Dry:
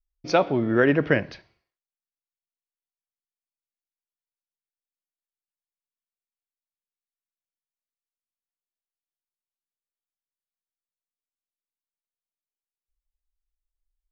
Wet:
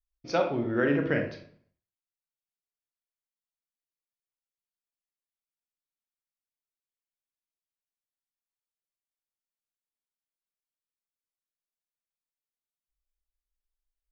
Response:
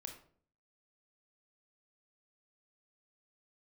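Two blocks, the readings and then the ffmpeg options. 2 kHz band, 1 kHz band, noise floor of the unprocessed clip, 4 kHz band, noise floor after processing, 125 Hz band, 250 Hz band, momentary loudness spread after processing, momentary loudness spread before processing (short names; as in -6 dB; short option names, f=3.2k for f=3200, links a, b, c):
-6.5 dB, -6.5 dB, under -85 dBFS, -6.5 dB, under -85 dBFS, -5.5 dB, -5.0 dB, 5 LU, 5 LU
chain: -filter_complex "[1:a]atrim=start_sample=2205[a];[0:a][a]afir=irnorm=-1:irlink=0,volume=-2dB"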